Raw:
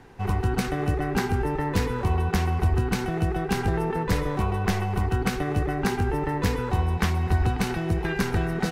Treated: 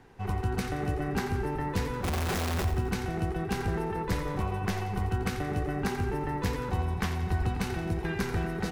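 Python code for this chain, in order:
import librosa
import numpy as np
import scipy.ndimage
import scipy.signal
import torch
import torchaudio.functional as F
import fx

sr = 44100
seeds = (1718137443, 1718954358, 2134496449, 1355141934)

y = fx.clip_1bit(x, sr, at=(2.04, 2.65))
y = fx.echo_split(y, sr, split_hz=340.0, low_ms=247, high_ms=87, feedback_pct=52, wet_db=-10.5)
y = F.gain(torch.from_numpy(y), -6.0).numpy()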